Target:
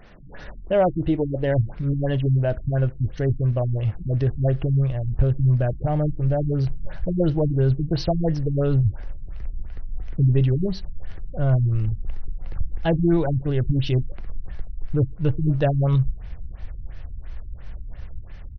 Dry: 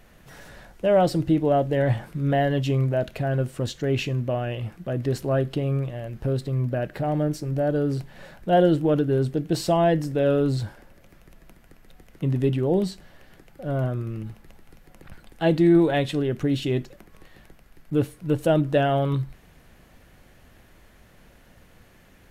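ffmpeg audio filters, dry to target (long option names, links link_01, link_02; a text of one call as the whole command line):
ffmpeg -i in.wav -filter_complex "[0:a]atempo=1.2,asplit=2[link_01][link_02];[link_02]acompressor=threshold=-34dB:ratio=6,volume=-2dB[link_03];[link_01][link_03]amix=inputs=2:normalize=0,asubboost=boost=10.5:cutoff=75,afftfilt=real='re*lt(b*sr/1024,280*pow(6400/280,0.5+0.5*sin(2*PI*2.9*pts/sr)))':imag='im*lt(b*sr/1024,280*pow(6400/280,0.5+0.5*sin(2*PI*2.9*pts/sr)))':win_size=1024:overlap=0.75" out.wav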